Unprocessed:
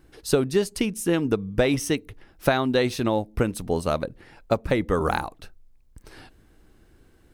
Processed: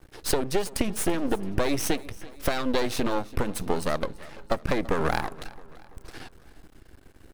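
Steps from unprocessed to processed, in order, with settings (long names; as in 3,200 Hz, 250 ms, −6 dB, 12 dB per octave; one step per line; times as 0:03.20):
downward compressor, threshold −24 dBFS, peak gain reduction 9.5 dB
half-wave rectification
repeating echo 335 ms, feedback 53%, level −20 dB
level +7.5 dB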